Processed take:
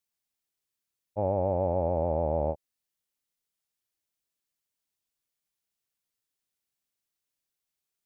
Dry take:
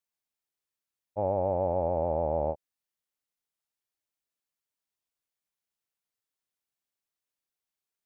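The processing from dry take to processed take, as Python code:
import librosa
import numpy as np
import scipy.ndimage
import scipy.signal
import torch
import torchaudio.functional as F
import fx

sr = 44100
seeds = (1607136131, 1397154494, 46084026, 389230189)

y = fx.peak_eq(x, sr, hz=970.0, db=-5.0, octaves=2.6)
y = F.gain(torch.from_numpy(y), 4.0).numpy()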